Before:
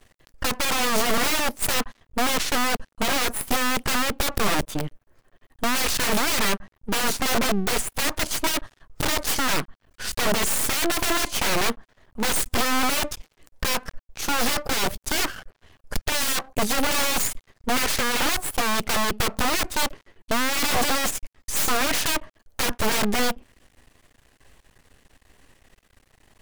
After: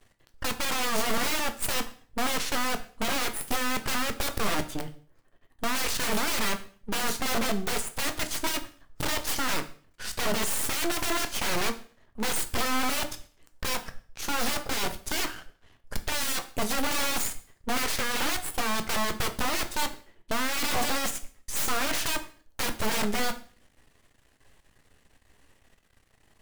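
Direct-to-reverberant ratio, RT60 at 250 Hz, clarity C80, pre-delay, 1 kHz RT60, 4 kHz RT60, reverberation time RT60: 7.5 dB, 0.50 s, 18.5 dB, 7 ms, 0.45 s, 0.45 s, 0.45 s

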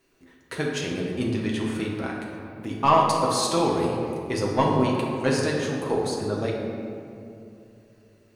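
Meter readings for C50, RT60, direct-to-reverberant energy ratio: 1.0 dB, 2.7 s, -3.0 dB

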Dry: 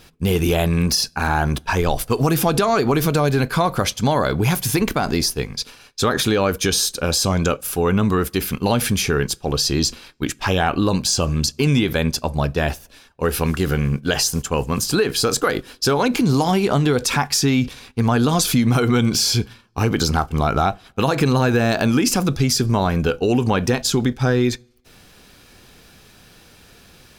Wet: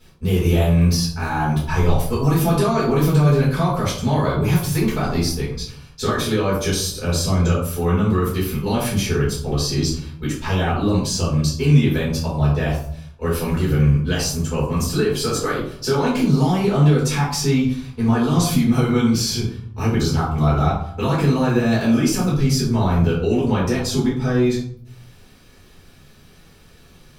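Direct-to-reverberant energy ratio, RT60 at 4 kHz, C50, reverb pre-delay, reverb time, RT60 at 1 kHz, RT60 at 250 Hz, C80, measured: -9.0 dB, 0.35 s, 4.0 dB, 4 ms, 0.65 s, 0.60 s, 0.95 s, 8.0 dB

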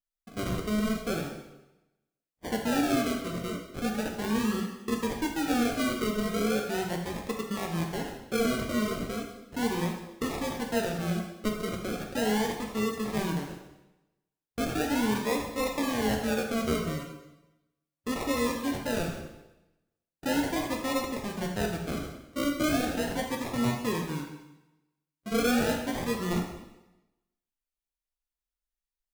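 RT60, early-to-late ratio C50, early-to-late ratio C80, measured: 0.95 s, 5.0 dB, 7.5 dB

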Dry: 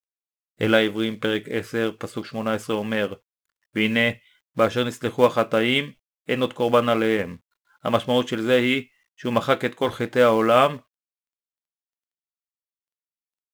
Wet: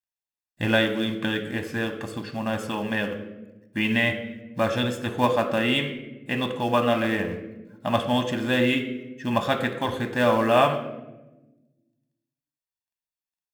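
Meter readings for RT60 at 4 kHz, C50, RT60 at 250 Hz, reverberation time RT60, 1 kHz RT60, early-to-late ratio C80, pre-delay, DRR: 0.70 s, 10.5 dB, 1.7 s, 1.1 s, 0.90 s, 12.5 dB, 3 ms, 8.0 dB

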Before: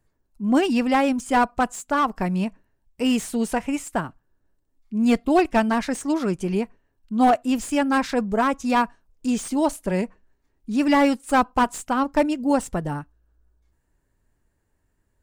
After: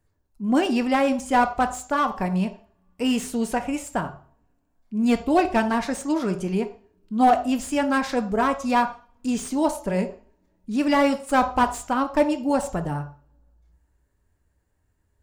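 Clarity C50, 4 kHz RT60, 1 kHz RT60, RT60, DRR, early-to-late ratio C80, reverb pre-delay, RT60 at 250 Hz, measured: 12.5 dB, 0.40 s, 0.45 s, 0.45 s, 7.5 dB, 16.0 dB, 3 ms, 0.55 s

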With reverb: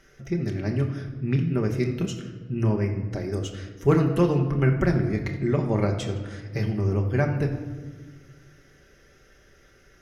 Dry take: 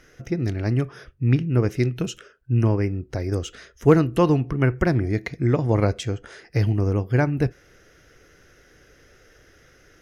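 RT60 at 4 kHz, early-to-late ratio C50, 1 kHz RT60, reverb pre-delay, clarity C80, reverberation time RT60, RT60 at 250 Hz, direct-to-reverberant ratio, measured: 0.90 s, 8.0 dB, 1.2 s, 5 ms, 10.0 dB, 1.4 s, 2.1 s, 1.5 dB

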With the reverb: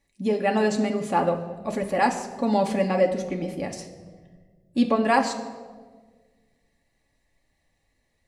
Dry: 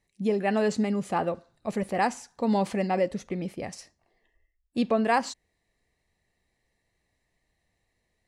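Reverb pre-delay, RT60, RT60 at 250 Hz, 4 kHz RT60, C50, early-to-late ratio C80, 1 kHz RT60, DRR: 4 ms, 1.6 s, 2.1 s, 0.95 s, 10.5 dB, 12.5 dB, 1.3 s, 2.5 dB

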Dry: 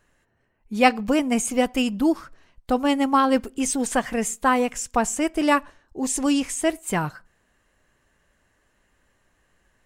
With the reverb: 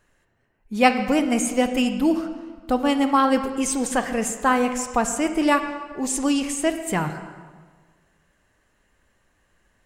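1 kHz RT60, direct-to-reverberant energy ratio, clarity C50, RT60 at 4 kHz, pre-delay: 1.5 s, 8.0 dB, 8.5 dB, 1.2 s, 30 ms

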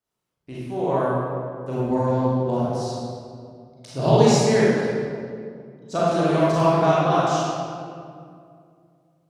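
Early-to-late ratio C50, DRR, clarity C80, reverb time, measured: -5.0 dB, -8.5 dB, -1.5 dB, 2.3 s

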